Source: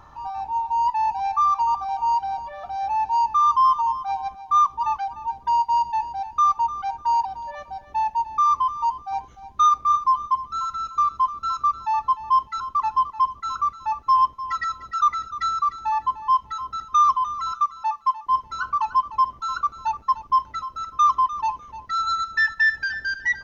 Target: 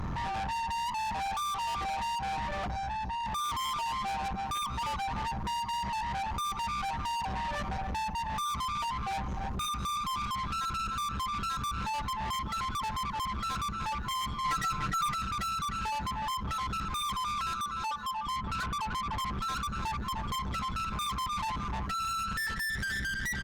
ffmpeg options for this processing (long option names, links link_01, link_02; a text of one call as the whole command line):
ffmpeg -i in.wav -filter_complex "[0:a]lowshelf=frequency=290:width_type=q:width=3:gain=12.5,bandreject=frequency=110.4:width_type=h:width=4,bandreject=frequency=220.8:width_type=h:width=4,bandreject=frequency=331.2:width_type=h:width=4,bandreject=frequency=441.6:width_type=h:width=4,bandreject=frequency=552:width_type=h:width=4,bandreject=frequency=662.4:width_type=h:width=4,bandreject=frequency=772.8:width_type=h:width=4,aeval=exprs='0.299*sin(PI/2*2.51*val(0)/0.299)':channel_layout=same,asettb=1/sr,asplit=3[link_01][link_02][link_03];[link_01]atrim=end=18.174[link_04];[link_02]atrim=start=18.17:end=19.2,asetpts=PTS-STARTPTS,afade=type=in:duration=0.004:curve=qsin,afade=type=out:start_time=1.026:duration=0.004:curve=qsin,lowpass=frequency=2600:width=0.5412,lowpass=frequency=2600:width=1.3066[link_05];[link_03]atrim=start=19.196[link_06];[link_04][link_05]acrossfade=duration=0.004:curve1=hsin:curve2=qsin[link_07];[link_07][link_06]acrossfade=duration=0.004:curve1=qsin:curve2=hsin,asplit=4[link_08][link_09][link_10][link_11];[link_09]adelay=186,afreqshift=140,volume=-24dB[link_12];[link_10]adelay=372,afreqshift=280,volume=-30dB[link_13];[link_11]adelay=558,afreqshift=420,volume=-36dB[link_14];[link_08][link_12][link_13][link_14]amix=inputs=4:normalize=0,acompressor=threshold=-21dB:ratio=8,asettb=1/sr,asplit=3[link_15][link_16][link_17];[link_15]atrim=end=2.674[link_18];[link_16]atrim=start=2.67:end=3.26,asetpts=PTS-STARTPTS,afade=type=in:duration=0.004:curve=qsin,afade=type=out:start_time=0.586:duration=0.004:curve=qsin,equalizer=frequency=1100:width=0.31:gain=-9[link_19];[link_17]atrim=start=3.256[link_20];[link_18][link_19]acrossfade=duration=0.004:curve1=hsin:curve2=qsin[link_21];[link_21][link_20]acrossfade=duration=0.004:curve1=qsin:curve2=hsin,asoftclip=type=tanh:threshold=-32dB,asettb=1/sr,asplit=3[link_22][link_23][link_24];[link_22]atrim=end=14.444[link_25];[link_23]atrim=start=14.44:end=15.14,asetpts=PTS-STARTPTS,afade=type=in:duration=0.004:curve=qsin,afade=type=out:start_time=0.696:duration=0.004:curve=qsin,aecho=1:1:6.6:0.86,atrim=end_sample=30870[link_26];[link_24]atrim=start=15.136[link_27];[link_25][link_26]acrossfade=duration=0.004:curve1=hsin:curve2=qsin[link_28];[link_28][link_27]acrossfade=duration=0.004:curve1=qsin:curve2=hsin" -ar 48000 -c:a libopus -b:a 64k out.opus